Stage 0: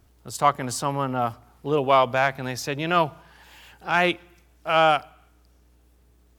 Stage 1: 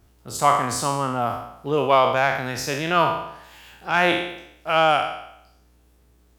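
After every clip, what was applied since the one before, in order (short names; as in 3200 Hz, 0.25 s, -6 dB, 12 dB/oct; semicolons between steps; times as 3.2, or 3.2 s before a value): spectral trails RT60 0.78 s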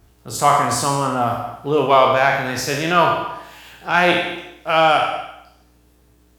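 in parallel at -11 dB: soft clip -16.5 dBFS, distortion -10 dB; on the sum: non-linear reverb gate 0.29 s falling, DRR 5 dB; gain +1.5 dB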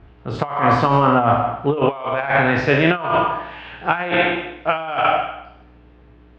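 LPF 2900 Hz 24 dB/oct; negative-ratio compressor -20 dBFS, ratio -0.5; gain +3.5 dB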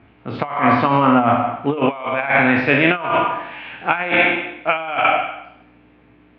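speaker cabinet 120–4000 Hz, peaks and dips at 160 Hz -4 dB, 250 Hz +6 dB, 410 Hz -4 dB, 2300 Hz +8 dB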